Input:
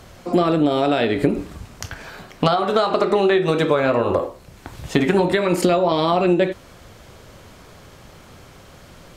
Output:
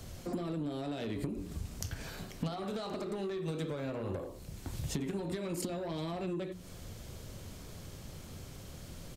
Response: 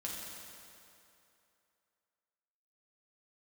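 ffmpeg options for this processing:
-filter_complex "[0:a]equalizer=frequency=1200:width=0.37:gain=-12.5,bandreject=frequency=60:width_type=h:width=6,bandreject=frequency=120:width_type=h:width=6,bandreject=frequency=180:width_type=h:width=6,bandreject=frequency=240:width_type=h:width=6,bandreject=frequency=300:width_type=h:width=6,bandreject=frequency=360:width_type=h:width=6,bandreject=frequency=420:width_type=h:width=6,acompressor=threshold=-34dB:ratio=5,acrossover=split=230|5500[link_01][link_02][link_03];[link_02]asoftclip=type=tanh:threshold=-36dB[link_04];[link_03]aecho=1:1:1073:0.0668[link_05];[link_01][link_04][link_05]amix=inputs=3:normalize=0,volume=1dB"

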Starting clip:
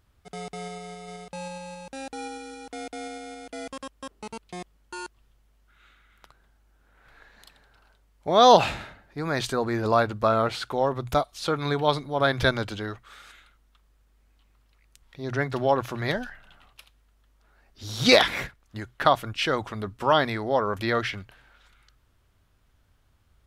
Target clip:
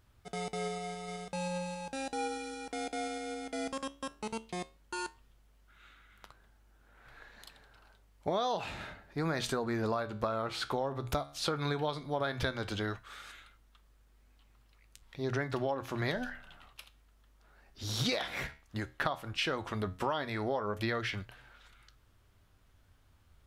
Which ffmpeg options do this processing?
ffmpeg -i in.wav -af "flanger=delay=8.1:depth=7:regen=77:speed=0.14:shape=triangular,acompressor=threshold=-33dB:ratio=20,volume=4dB" out.wav

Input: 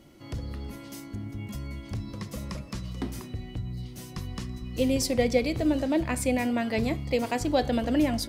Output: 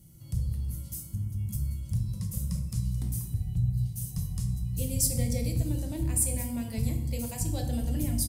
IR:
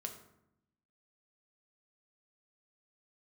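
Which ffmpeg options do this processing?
-filter_complex "[0:a]firequalizer=gain_entry='entry(170,0);entry(280,-21);entry(1600,-22);entry(9200,6)':delay=0.05:min_phase=1[link_01];[1:a]atrim=start_sample=2205,asetrate=33075,aresample=44100[link_02];[link_01][link_02]afir=irnorm=-1:irlink=0,volume=6dB"

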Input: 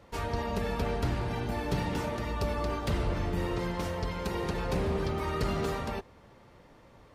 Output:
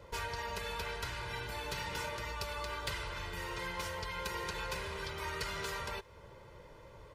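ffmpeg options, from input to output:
ffmpeg -i in.wav -filter_complex "[0:a]aecho=1:1:2:0.66,acrossover=split=1100[link_01][link_02];[link_01]acompressor=threshold=-41dB:ratio=16[link_03];[link_03][link_02]amix=inputs=2:normalize=0" out.wav

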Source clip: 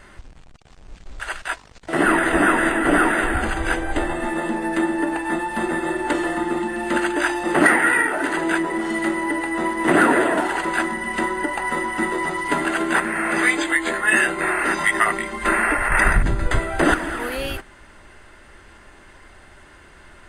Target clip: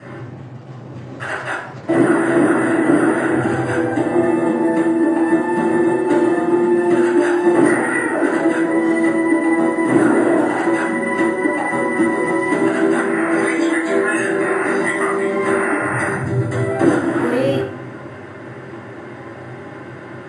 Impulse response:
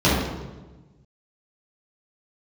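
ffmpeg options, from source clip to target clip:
-filter_complex "[0:a]lowpass=frequency=11000:width=0.5412,lowpass=frequency=11000:width=1.3066,highshelf=frequency=4400:gain=-8.5,acrossover=split=5600[link_01][link_02];[link_01]acompressor=threshold=-31dB:ratio=5[link_03];[link_03][link_02]amix=inputs=2:normalize=0[link_04];[1:a]atrim=start_sample=2205,asetrate=83790,aresample=44100[link_05];[link_04][link_05]afir=irnorm=-1:irlink=0,volume=-6.5dB"

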